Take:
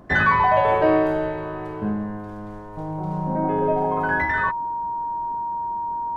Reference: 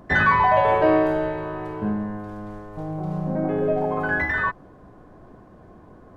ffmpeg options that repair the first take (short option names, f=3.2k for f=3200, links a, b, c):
-af "bandreject=f=940:w=30"